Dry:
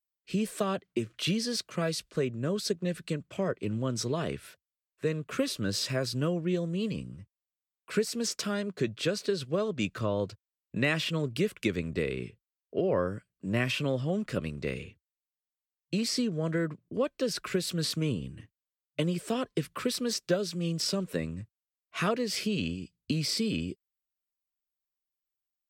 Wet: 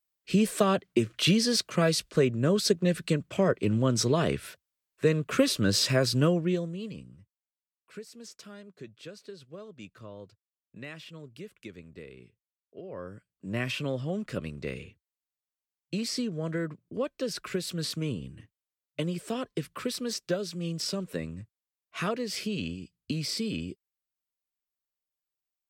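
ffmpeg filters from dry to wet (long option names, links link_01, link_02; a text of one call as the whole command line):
ffmpeg -i in.wav -af "volume=19dB,afade=type=out:start_time=6.24:duration=0.53:silence=0.251189,afade=type=out:start_time=6.77:duration=1.17:silence=0.354813,afade=type=in:start_time=12.89:duration=0.79:silence=0.223872" out.wav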